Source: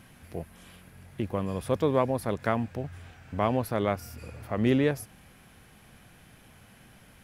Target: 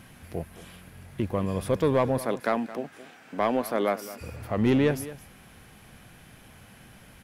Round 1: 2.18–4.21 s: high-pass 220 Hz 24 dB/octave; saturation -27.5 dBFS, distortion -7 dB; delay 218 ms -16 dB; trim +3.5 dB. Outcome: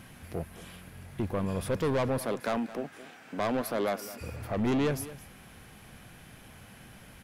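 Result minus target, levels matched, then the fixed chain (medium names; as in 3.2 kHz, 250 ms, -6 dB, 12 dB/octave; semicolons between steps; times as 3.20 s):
saturation: distortion +10 dB
2.18–4.21 s: high-pass 220 Hz 24 dB/octave; saturation -17 dBFS, distortion -16 dB; delay 218 ms -16 dB; trim +3.5 dB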